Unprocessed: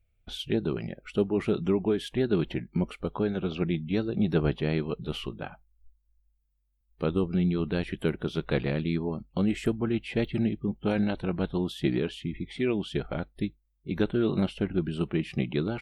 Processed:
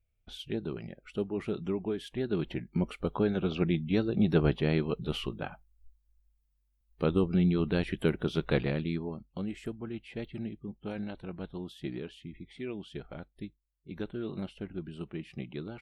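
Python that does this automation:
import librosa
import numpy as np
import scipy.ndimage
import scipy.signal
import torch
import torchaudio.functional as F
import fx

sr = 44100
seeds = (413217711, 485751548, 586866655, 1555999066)

y = fx.gain(x, sr, db=fx.line((2.13, -7.0), (3.07, 0.0), (8.5, 0.0), (9.55, -11.0)))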